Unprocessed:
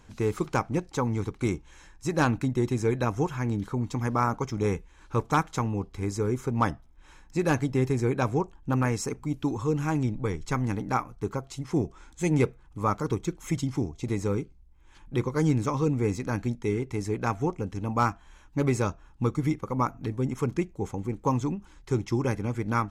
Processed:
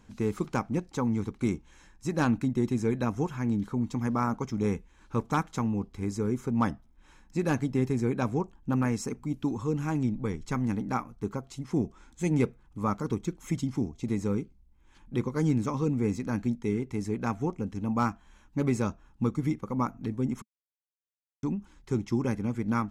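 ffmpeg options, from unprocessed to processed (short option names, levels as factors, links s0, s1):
-filter_complex "[0:a]asplit=3[s0][s1][s2];[s0]atrim=end=20.42,asetpts=PTS-STARTPTS,afade=t=out:st=20.416:d=0.004:c=hsin[s3];[s1]atrim=start=20.42:end=21.43,asetpts=PTS-STARTPTS,volume=0[s4];[s2]atrim=start=21.43,asetpts=PTS-STARTPTS,afade=t=in:d=0.004:c=hsin[s5];[s3][s4][s5]concat=n=3:v=0:a=1,equalizer=f=220:t=o:w=0.57:g=9,volume=0.596"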